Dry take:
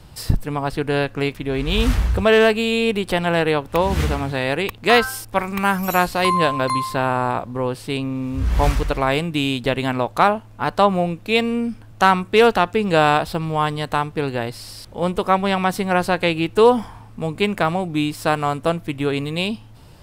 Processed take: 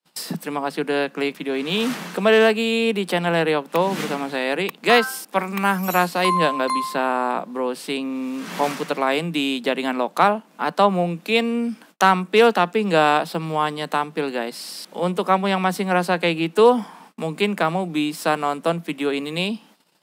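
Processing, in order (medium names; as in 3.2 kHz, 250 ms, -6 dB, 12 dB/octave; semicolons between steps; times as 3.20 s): steep high-pass 160 Hz 96 dB/octave; gate -47 dBFS, range -42 dB; tape noise reduction on one side only encoder only; trim -1 dB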